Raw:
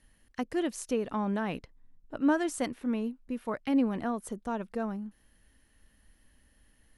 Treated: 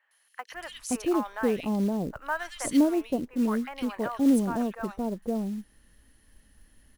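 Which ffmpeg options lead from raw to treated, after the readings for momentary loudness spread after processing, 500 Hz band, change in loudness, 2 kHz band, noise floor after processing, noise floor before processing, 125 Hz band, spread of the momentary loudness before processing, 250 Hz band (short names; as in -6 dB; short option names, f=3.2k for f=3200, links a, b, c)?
15 LU, +3.5 dB, +4.0 dB, +3.0 dB, -67 dBFS, -66 dBFS, +5.0 dB, 12 LU, +5.0 dB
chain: -filter_complex "[0:a]acrossover=split=750|2400[a][b][c];[c]adelay=110[d];[a]adelay=520[e];[e][b][d]amix=inputs=3:normalize=0,acrusher=bits=6:mode=log:mix=0:aa=0.000001,volume=5dB"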